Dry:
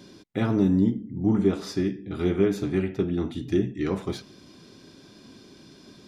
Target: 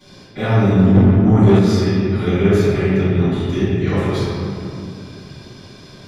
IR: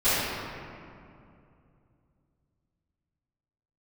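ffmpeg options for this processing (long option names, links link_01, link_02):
-filter_complex "[0:a]equalizer=frequency=290:width_type=o:width=0.92:gain=-11[link_01];[1:a]atrim=start_sample=2205[link_02];[link_01][link_02]afir=irnorm=-1:irlink=0,asettb=1/sr,asplit=3[link_03][link_04][link_05];[link_03]atrim=end=0.954[link_06];[link_04]atrim=start=0.95:end=1.59,asetpts=PTS-STARTPTS,afade=type=in:duration=0.004:curve=qsin,afade=type=out:start_time=0.636:duration=0.004:curve=qsin,acontrast=76[link_07];[link_05]atrim=start=1.586[link_08];[link_06][link_07]acrossfade=duration=0.004:curve1=hsin:curve2=qsin[link_09];[link_09][link_08]acrossfade=duration=0.004:curve1=qsin:curve2=hsin,volume=-4dB"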